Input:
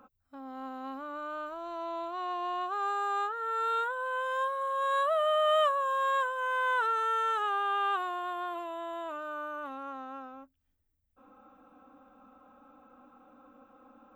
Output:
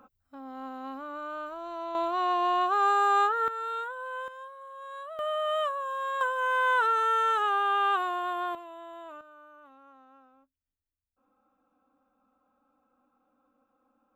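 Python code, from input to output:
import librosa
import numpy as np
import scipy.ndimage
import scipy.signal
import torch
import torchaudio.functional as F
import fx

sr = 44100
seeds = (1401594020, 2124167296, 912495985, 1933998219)

y = fx.gain(x, sr, db=fx.steps((0.0, 1.0), (1.95, 8.0), (3.48, -3.5), (4.28, -13.0), (5.19, -3.5), (6.21, 4.0), (8.55, -6.0), (9.21, -14.5)))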